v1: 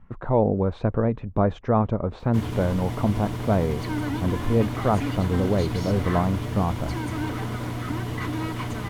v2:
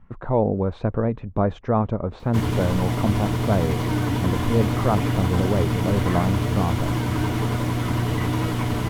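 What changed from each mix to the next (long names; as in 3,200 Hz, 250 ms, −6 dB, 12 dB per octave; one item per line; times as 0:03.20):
first sound +7.0 dB
second sound: add Butterworth low-pass 2,900 Hz 72 dB per octave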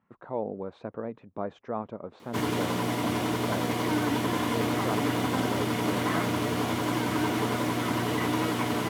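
speech −10.5 dB
master: add high-pass filter 230 Hz 12 dB per octave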